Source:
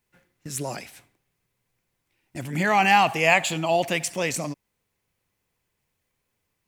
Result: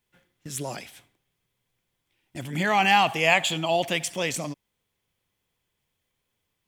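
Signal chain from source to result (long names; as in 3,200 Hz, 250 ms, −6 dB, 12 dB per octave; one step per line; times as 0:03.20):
parametric band 3,300 Hz +9.5 dB 0.24 octaves
level −2 dB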